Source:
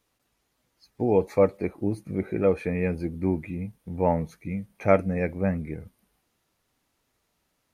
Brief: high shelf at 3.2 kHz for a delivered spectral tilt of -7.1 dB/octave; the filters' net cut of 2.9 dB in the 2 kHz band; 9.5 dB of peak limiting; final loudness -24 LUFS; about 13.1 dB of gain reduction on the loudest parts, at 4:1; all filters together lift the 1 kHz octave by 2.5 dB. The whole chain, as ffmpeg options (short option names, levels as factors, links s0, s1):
-af "equalizer=f=1000:t=o:g=4.5,equalizer=f=2000:t=o:g=-3.5,highshelf=f=3200:g=-3.5,acompressor=threshold=0.0355:ratio=4,volume=4.73,alimiter=limit=0.266:level=0:latency=1"